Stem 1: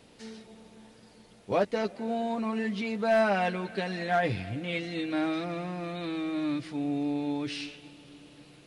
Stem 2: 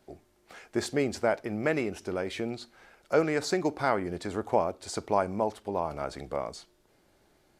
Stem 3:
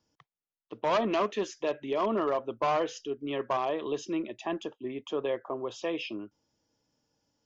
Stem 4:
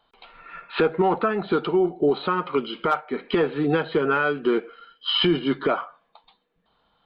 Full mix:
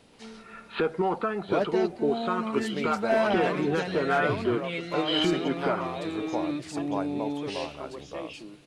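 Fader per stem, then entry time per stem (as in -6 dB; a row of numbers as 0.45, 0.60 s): -1.0, -6.5, -6.5, -6.0 dB; 0.00, 1.80, 2.30, 0.00 s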